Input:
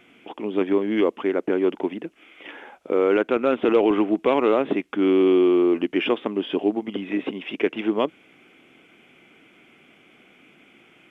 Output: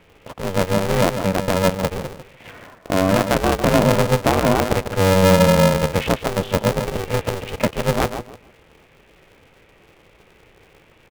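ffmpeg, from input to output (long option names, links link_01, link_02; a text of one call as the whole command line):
ffmpeg -i in.wav -filter_complex "[0:a]aemphasis=mode=reproduction:type=bsi,asplit=2[link_01][link_02];[link_02]adelay=149,lowpass=frequency=2200:poles=1,volume=-8.5dB,asplit=2[link_03][link_04];[link_04]adelay=149,lowpass=frequency=2200:poles=1,volume=0.26,asplit=2[link_05][link_06];[link_06]adelay=149,lowpass=frequency=2200:poles=1,volume=0.26[link_07];[link_01][link_03][link_05][link_07]amix=inputs=4:normalize=0,aeval=exprs='val(0)*sgn(sin(2*PI*190*n/s))':channel_layout=same" out.wav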